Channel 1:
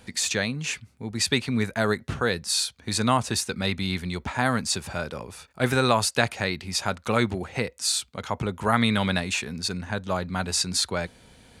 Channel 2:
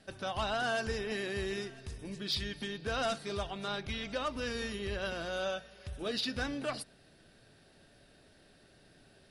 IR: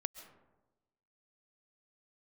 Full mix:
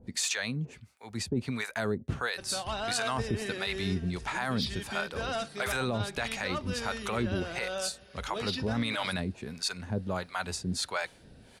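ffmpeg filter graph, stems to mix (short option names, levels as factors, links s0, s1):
-filter_complex "[0:a]acrossover=split=600[s0][s1];[s0]aeval=exprs='val(0)*(1-1/2+1/2*cos(2*PI*1.5*n/s))':c=same[s2];[s1]aeval=exprs='val(0)*(1-1/2-1/2*cos(2*PI*1.5*n/s))':c=same[s3];[s2][s3]amix=inputs=2:normalize=0,volume=1.12[s4];[1:a]adelay=2300,volume=0.944[s5];[s4][s5]amix=inputs=2:normalize=0,alimiter=limit=0.0944:level=0:latency=1:release=22"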